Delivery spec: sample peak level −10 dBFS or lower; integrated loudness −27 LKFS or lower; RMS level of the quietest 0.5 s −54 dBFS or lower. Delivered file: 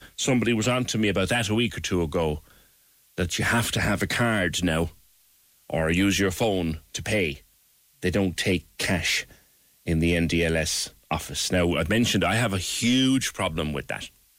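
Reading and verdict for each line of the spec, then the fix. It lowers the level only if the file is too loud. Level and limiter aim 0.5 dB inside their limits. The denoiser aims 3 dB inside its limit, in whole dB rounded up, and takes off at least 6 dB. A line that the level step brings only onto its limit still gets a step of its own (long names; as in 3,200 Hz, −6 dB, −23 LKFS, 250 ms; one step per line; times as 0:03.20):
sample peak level −15.0 dBFS: in spec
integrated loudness −24.5 LKFS: out of spec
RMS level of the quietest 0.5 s −62 dBFS: in spec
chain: level −3 dB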